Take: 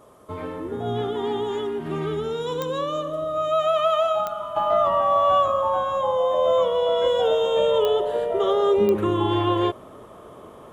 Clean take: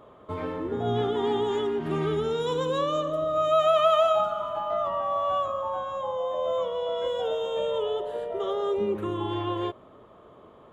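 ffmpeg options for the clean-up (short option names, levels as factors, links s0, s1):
-af "adeclick=t=4,agate=range=0.0891:threshold=0.0178,asetnsamples=n=441:p=0,asendcmd='4.56 volume volume -8dB',volume=1"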